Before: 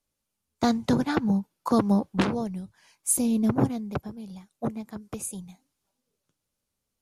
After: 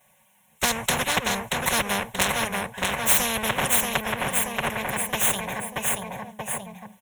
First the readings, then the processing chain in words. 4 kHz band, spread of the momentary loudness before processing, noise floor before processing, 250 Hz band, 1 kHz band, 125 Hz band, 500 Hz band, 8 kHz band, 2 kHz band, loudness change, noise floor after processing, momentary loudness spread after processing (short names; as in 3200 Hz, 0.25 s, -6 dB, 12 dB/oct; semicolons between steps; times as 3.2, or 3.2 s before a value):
+14.5 dB, 16 LU, -83 dBFS, -8.5 dB, +6.5 dB, -3.5 dB, +1.5 dB, +8.0 dB, +15.0 dB, +2.5 dB, -62 dBFS, 11 LU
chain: minimum comb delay 5.4 ms; HPF 100 Hz 12 dB/oct; bell 1200 Hz +9.5 dB 1.3 oct; fixed phaser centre 1300 Hz, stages 6; feedback echo 0.631 s, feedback 38%, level -8 dB; spectral compressor 4:1; gain +6.5 dB